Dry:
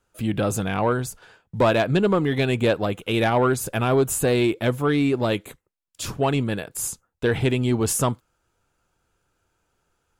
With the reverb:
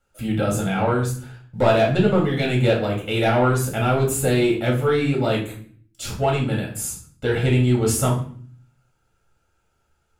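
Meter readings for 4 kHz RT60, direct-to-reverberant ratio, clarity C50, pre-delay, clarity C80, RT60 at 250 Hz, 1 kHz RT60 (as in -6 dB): 0.45 s, -2.5 dB, 7.5 dB, 4 ms, 12.5 dB, 0.80 s, 0.45 s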